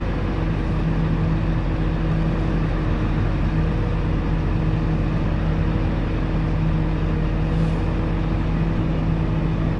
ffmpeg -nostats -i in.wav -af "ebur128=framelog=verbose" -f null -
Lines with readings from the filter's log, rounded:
Integrated loudness:
  I:         -22.4 LUFS
  Threshold: -32.4 LUFS
Loudness range:
  LRA:         0.2 LU
  Threshold: -42.4 LUFS
  LRA low:   -22.5 LUFS
  LRA high:  -22.3 LUFS